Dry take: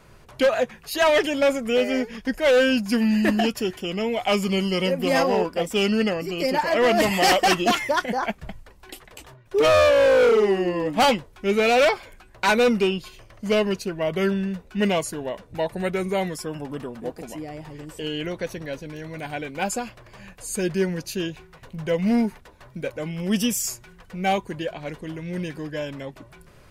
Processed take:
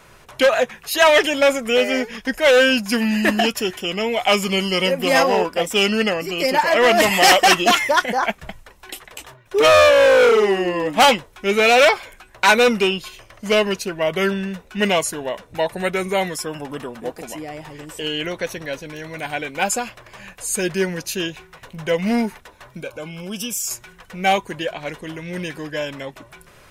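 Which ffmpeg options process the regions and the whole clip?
ffmpeg -i in.wav -filter_complex "[0:a]asettb=1/sr,asplit=3[link_01][link_02][link_03];[link_01]atrim=end=22.804[link_04];[link_02]atrim=start=22.8:end=23.71,asetpts=PTS-STARTPTS,afade=type=in:duration=0.004:curve=qsin,afade=type=out:start_time=0.906:duration=0.004:curve=qsin,acompressor=threshold=-34dB:ratio=2:attack=3.2:release=140:knee=1:detection=peak,asuperstop=centerf=1900:order=8:qfactor=4.8[link_05];[link_03]atrim=start=23.706[link_06];[link_04][link_05]acrossfade=duration=0.004:curve1=hsin:curve2=qsin[link_07];[link_07][link_06]acrossfade=duration=0.004:curve1=qsin:curve2=hsin,lowshelf=frequency=480:gain=-9.5,bandreject=frequency=4600:width=13,volume=8dB" out.wav

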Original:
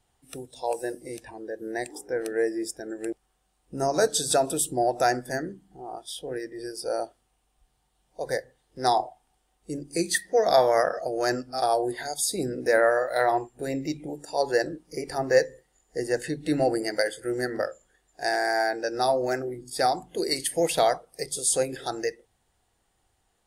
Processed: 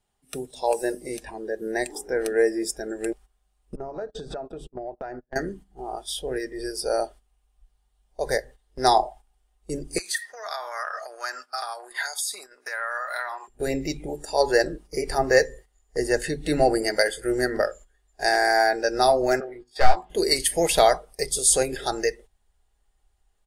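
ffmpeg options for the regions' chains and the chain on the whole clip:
ffmpeg -i in.wav -filter_complex "[0:a]asettb=1/sr,asplit=3[link_01][link_02][link_03];[link_01]atrim=end=3.754[link_04];[link_02]atrim=start=3.75:end=5.36,asetpts=PTS-STARTPTS,afade=type=in:duration=0.004:curve=qsin,afade=type=out:start_time=1.606:duration=0.004:curve=qsin,agate=range=-32dB:threshold=-31dB:ratio=16:release=100:detection=peak,lowpass=1400,acompressor=threshold=-36dB:ratio=6:attack=3.2:release=140:knee=1:detection=peak[link_05];[link_03]atrim=start=5.356[link_06];[link_04][link_05]acrossfade=duration=0.004:curve1=hsin:curve2=qsin[link_07];[link_07][link_06]acrossfade=duration=0.004:curve1=qsin:curve2=hsin,asettb=1/sr,asplit=3[link_08][link_09][link_10];[link_08]atrim=end=9.984[link_11];[link_09]atrim=start=9.98:end=13.48,asetpts=PTS-STARTPTS,afade=type=in:duration=0.004:curve=qsin,afade=type=out:start_time=3.496:duration=0.004:curve=qsin,acompressor=threshold=-30dB:ratio=8:attack=3.2:release=140:knee=1:detection=peak,highpass=frequency=1200:width_type=q:width=2.4[link_12];[link_10]atrim=start=13.476[link_13];[link_11][link_12]acrossfade=duration=0.004:curve1=hsin:curve2=qsin[link_14];[link_14][link_13]acrossfade=duration=0.004:curve1=qsin:curve2=hsin,asettb=1/sr,asplit=3[link_15][link_16][link_17];[link_15]atrim=end=19.404[link_18];[link_16]atrim=start=19.4:end=20.1,asetpts=PTS-STARTPTS,afade=type=in:duration=0.004:curve=qsin,afade=type=out:start_time=0.696:duration=0.004:curve=qsin,acrossover=split=430 3900:gain=0.112 1 0.0794[link_19][link_20][link_21];[link_19][link_20][link_21]amix=inputs=3:normalize=0,aeval=exprs='clip(val(0),-1,0.0531)':channel_layout=same,asplit=2[link_22][link_23];[link_23]adelay=17,volume=-6dB[link_24];[link_22][link_24]amix=inputs=2:normalize=0,atrim=end_sample=30870[link_25];[link_17]atrim=start=20.096[link_26];[link_18][link_25]acrossfade=duration=0.004:curve1=hsin:curve2=qsin[link_27];[link_27][link_26]acrossfade=duration=0.004:curve1=qsin:curve2=hsin,agate=range=-11dB:threshold=-47dB:ratio=16:detection=peak,aecho=1:1:4.9:0.38,asubboost=boost=7.5:cutoff=58,volume=5dB" out.wav

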